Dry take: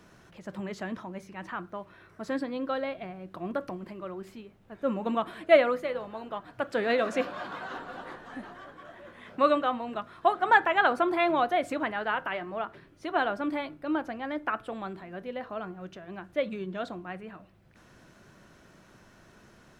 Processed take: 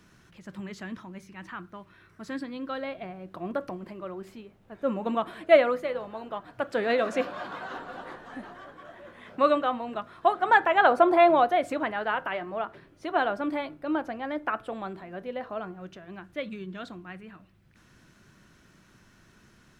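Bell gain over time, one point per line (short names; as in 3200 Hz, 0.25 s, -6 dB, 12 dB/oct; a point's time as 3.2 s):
bell 620 Hz 1.4 oct
2.57 s -9 dB
3.02 s +1.5 dB
10.55 s +1.5 dB
11.16 s +11.5 dB
11.56 s +2.5 dB
15.56 s +2.5 dB
16.6 s -9 dB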